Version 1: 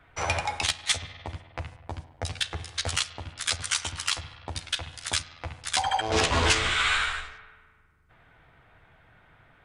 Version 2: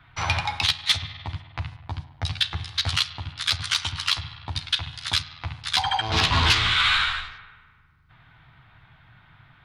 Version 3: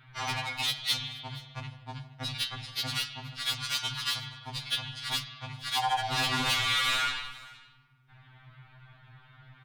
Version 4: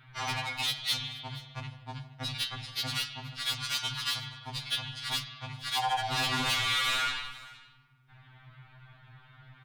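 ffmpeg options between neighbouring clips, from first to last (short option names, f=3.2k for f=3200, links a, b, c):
-af "equalizer=f=125:t=o:w=1:g=9,equalizer=f=500:t=o:w=1:g=-12,equalizer=f=1k:t=o:w=1:g=5,equalizer=f=4k:t=o:w=1:g=10,equalizer=f=8k:t=o:w=1:g=-11,acontrast=88,volume=-6dB"
-af "asoftclip=type=tanh:threshold=-21.5dB,aecho=1:1:473:0.0841,afftfilt=real='re*2.45*eq(mod(b,6),0)':imag='im*2.45*eq(mod(b,6),0)':win_size=2048:overlap=0.75"
-af "asoftclip=type=tanh:threshold=-20.5dB"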